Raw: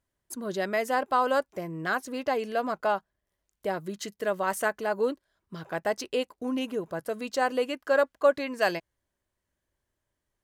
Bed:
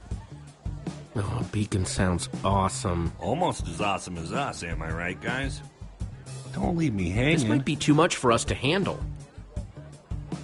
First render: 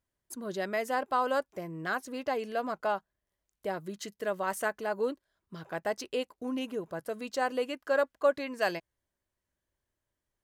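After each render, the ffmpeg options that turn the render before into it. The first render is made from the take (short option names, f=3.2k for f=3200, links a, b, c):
-af "volume=-4dB"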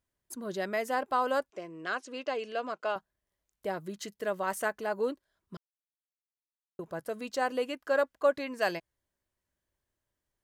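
-filter_complex "[0:a]asettb=1/sr,asplit=3[a][b][c];[a]atrim=end=1.504[d];[b]atrim=start=1.5:end=2.96,asetpts=PTS-STARTPTS,afade=t=in:d=0.004:c=qsin,afade=t=out:st=1.456:d=0.004:c=qsin,highpass=310,equalizer=f=840:t=q:w=4:g=-6,equalizer=f=1.9k:t=q:w=4:g=-3,equalizer=f=2.8k:t=q:w=4:g=5,lowpass=f=7.7k:w=0.5412,lowpass=f=7.7k:w=1.3066[e];[c]atrim=start=2.956[f];[d][e]acrossfade=d=0.004:c1=hsin:c2=qsin[g];[g][f]acrossfade=d=0.004:c1=qsin:c2=hsin,asplit=3[h][i][j];[h]atrim=end=5.57,asetpts=PTS-STARTPTS,afade=t=out:st=5.566:d=0.004:c=hsin[k];[i]atrim=start=5.57:end=6.79,asetpts=PTS-STARTPTS,volume=0[l];[j]atrim=start=6.79,asetpts=PTS-STARTPTS,afade=t=in:d=0.004:c=hsin[m];[k][l][m]concat=n=3:v=0:a=1"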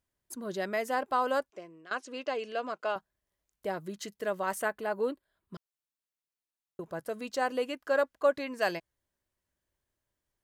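-filter_complex "[0:a]asettb=1/sr,asplit=3[a][b][c];[a]atrim=end=4.614[d];[b]atrim=start=4.61:end=5.54,asetpts=PTS-STARTPTS,afade=t=in:d=0.004:c=qsin,afade=t=out:st=0.926:d=0.004:c=qsin,equalizer=f=5.9k:w=2.8:g=-11.5[e];[c]atrim=start=5.536[f];[d][e]acrossfade=d=0.004:c1=hsin:c2=qsin[g];[g][f]acrossfade=d=0.004:c1=qsin:c2=hsin,asplit=2[h][i];[h]atrim=end=1.91,asetpts=PTS-STARTPTS,afade=t=out:st=1.37:d=0.54:silence=0.133352[j];[i]atrim=start=1.91,asetpts=PTS-STARTPTS,afade=t=in:d=0.004:c=hsin:silence=0.133352[k];[j][k]concat=n=2:v=0:a=1"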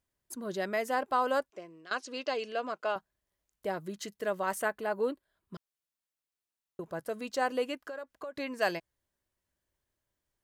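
-filter_complex "[0:a]asettb=1/sr,asplit=3[a][b][c];[a]atrim=end=1.684[d];[b]atrim=start=1.68:end=2.45,asetpts=PTS-STARTPTS,afade=t=in:d=0.004:c=qsin,afade=t=out:st=0.766:d=0.004:c=qsin,equalizer=f=4.6k:w=1.4:g=7.5[e];[c]atrim=start=2.446[f];[d][e]acrossfade=d=0.004:c1=hsin:c2=qsin[g];[g][f]acrossfade=d=0.004:c1=qsin:c2=hsin,asettb=1/sr,asplit=3[h][i][j];[h]atrim=end=7.784[k];[i]atrim=start=7.78:end=8.36,asetpts=PTS-STARTPTS,afade=t=in:d=0.004:c=qsin,afade=t=out:st=0.576:d=0.004:c=qsin,acompressor=threshold=-37dB:ratio=12:attack=3.2:release=140:knee=1:detection=peak[l];[j]atrim=start=8.356[m];[k][l]acrossfade=d=0.004:c1=hsin:c2=qsin[n];[n][m]acrossfade=d=0.004:c1=qsin:c2=hsin"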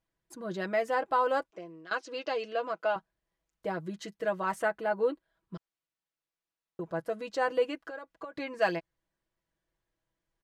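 -af "aemphasis=mode=reproduction:type=50fm,aecho=1:1:6.1:0.65"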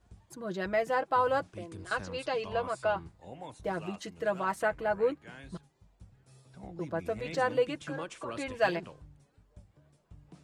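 -filter_complex "[1:a]volume=-19.5dB[a];[0:a][a]amix=inputs=2:normalize=0"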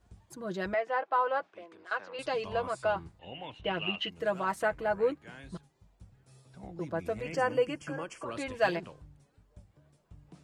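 -filter_complex "[0:a]asettb=1/sr,asplit=3[a][b][c];[a]atrim=end=0.744[d];[b]atrim=start=0.74:end=2.19,asetpts=PTS-STARTPTS,afade=t=in:d=0.004:c=qsin,afade=t=out:st=1.446:d=0.004:c=qsin,highpass=540,lowpass=2.8k[e];[c]atrim=start=2.186[f];[d][e]acrossfade=d=0.004:c1=hsin:c2=qsin[g];[g][f]acrossfade=d=0.004:c1=qsin:c2=hsin,asettb=1/sr,asplit=3[h][i][j];[h]atrim=end=3.194[k];[i]atrim=start=3.19:end=4.1,asetpts=PTS-STARTPTS,afade=t=in:d=0.004:c=qsin,afade=t=out:st=0.906:d=0.004:c=qsin,lowpass=f=2.9k:t=q:w=12[l];[j]atrim=start=4.096[m];[k][l]acrossfade=d=0.004:c1=hsin:c2=qsin[n];[n][m]acrossfade=d=0.004:c1=qsin:c2=hsin,asettb=1/sr,asplit=3[o][p][q];[o]atrim=end=7.224[r];[p]atrim=start=7.22:end=8.26,asetpts=PTS-STARTPTS,afade=t=in:d=0.004:c=qsin,afade=t=out:st=1.036:d=0.004:c=qsin,asuperstop=centerf=3800:order=8:qfactor=3.1[s];[q]atrim=start=8.256[t];[r][s]acrossfade=d=0.004:c1=hsin:c2=qsin[u];[u][t]acrossfade=d=0.004:c1=qsin:c2=hsin"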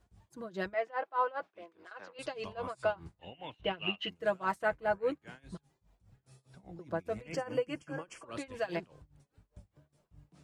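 -af "tremolo=f=4.9:d=0.91"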